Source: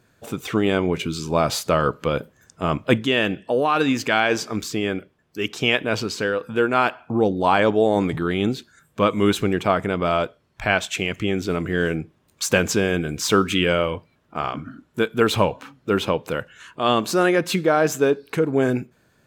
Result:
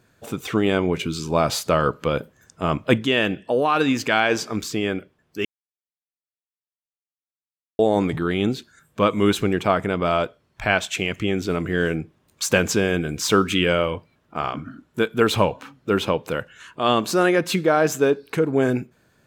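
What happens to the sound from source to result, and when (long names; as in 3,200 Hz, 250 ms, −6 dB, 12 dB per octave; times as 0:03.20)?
0:05.45–0:07.79: silence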